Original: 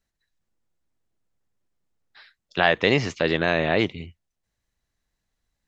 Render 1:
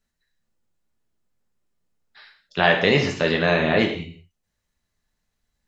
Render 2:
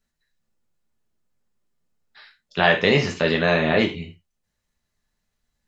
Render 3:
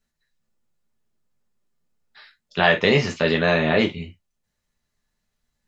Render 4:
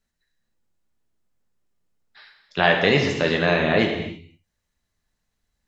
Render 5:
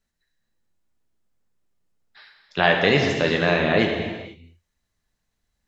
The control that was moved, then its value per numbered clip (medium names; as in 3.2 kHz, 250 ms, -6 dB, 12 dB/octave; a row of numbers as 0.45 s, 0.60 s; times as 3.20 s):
gated-style reverb, gate: 210 ms, 120 ms, 80 ms, 350 ms, 520 ms